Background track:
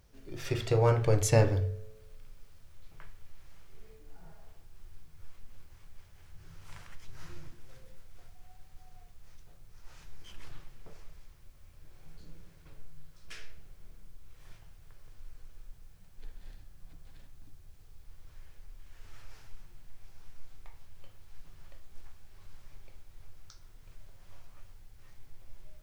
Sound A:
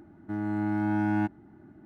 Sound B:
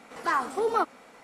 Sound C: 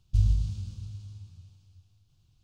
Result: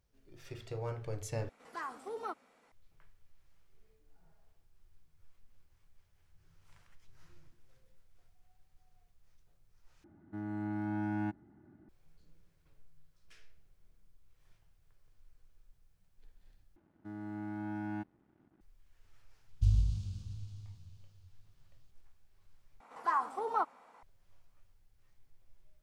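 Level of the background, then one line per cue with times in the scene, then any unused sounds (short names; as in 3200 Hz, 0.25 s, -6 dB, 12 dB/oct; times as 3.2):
background track -14.5 dB
1.49 replace with B -15.5 dB
10.04 replace with A -9.5 dB + bell 89 Hz +2.5 dB 2.1 oct
16.76 replace with A -12.5 dB + crossover distortion -57.5 dBFS
19.48 add C -4.5 dB
22.8 replace with B -16 dB + bell 950 Hz +14 dB 1.1 oct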